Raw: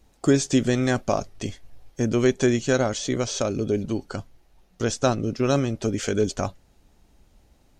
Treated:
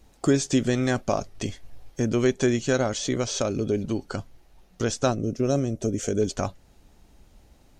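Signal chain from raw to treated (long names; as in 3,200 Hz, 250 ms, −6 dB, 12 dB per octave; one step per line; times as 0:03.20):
in parallel at +1 dB: downward compressor, threshold −32 dBFS, peak gain reduction 17.5 dB
on the sum: gain on a spectral selection 0:05.11–0:06.22, 740–5,400 Hz −9 dB
level −3.5 dB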